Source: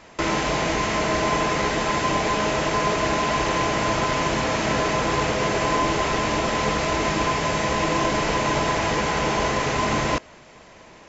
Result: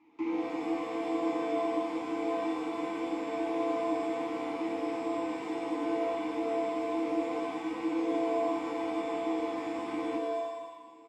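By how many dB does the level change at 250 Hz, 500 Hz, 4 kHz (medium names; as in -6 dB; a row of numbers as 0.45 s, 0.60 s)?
-4.5 dB, -8.0 dB, -21.0 dB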